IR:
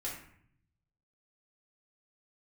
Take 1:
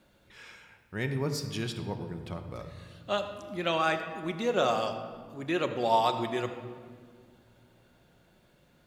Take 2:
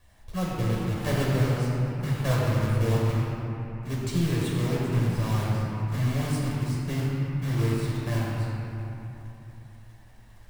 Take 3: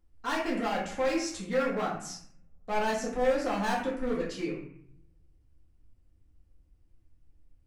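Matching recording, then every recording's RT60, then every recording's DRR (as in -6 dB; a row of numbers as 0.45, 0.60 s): 3; not exponential, 2.9 s, 0.65 s; 5.5, -6.0, -6.0 dB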